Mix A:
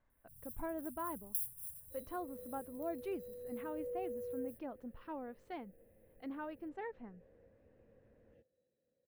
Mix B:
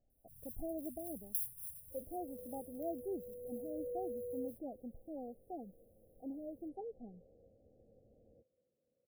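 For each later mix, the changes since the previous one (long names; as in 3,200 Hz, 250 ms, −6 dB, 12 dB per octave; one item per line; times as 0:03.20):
master: add linear-phase brick-wall band-stop 820–8,700 Hz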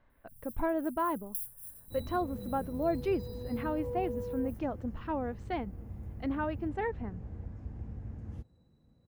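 speech +10.5 dB
second sound: remove formant filter e
master: remove linear-phase brick-wall band-stop 820–8,700 Hz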